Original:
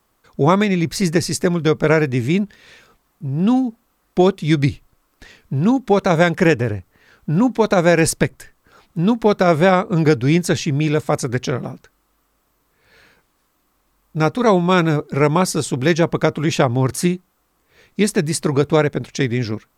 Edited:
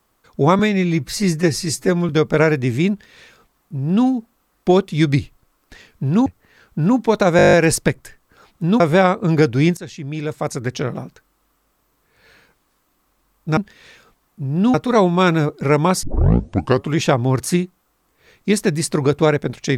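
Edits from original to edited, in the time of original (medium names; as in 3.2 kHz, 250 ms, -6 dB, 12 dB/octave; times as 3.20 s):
0.59–1.59 s: stretch 1.5×
2.40–3.57 s: copy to 14.25 s
5.76–6.77 s: delete
7.88 s: stutter 0.02 s, 9 plays
9.15–9.48 s: delete
10.45–11.70 s: fade in, from -17.5 dB
15.54 s: tape start 0.88 s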